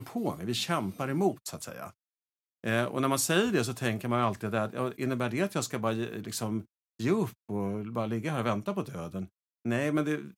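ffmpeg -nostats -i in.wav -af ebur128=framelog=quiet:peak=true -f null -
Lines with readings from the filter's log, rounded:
Integrated loudness:
  I:         -31.1 LUFS
  Threshold: -41.3 LUFS
Loudness range:
  LRA:         3.5 LU
  Threshold: -51.2 LUFS
  LRA low:   -33.0 LUFS
  LRA high:  -29.5 LUFS
True peak:
  Peak:      -11.4 dBFS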